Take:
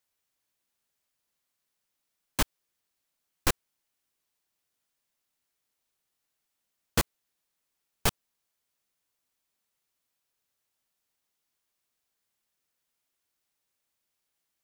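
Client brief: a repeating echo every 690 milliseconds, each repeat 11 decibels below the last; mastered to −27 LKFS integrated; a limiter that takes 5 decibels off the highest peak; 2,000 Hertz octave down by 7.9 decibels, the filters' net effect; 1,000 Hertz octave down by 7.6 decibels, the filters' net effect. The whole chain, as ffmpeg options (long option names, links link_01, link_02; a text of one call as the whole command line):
ffmpeg -i in.wav -af "equalizer=frequency=1000:width_type=o:gain=-7.5,equalizer=frequency=2000:width_type=o:gain=-8,alimiter=limit=-15.5dB:level=0:latency=1,aecho=1:1:690|1380|2070:0.282|0.0789|0.0221,volume=11dB" out.wav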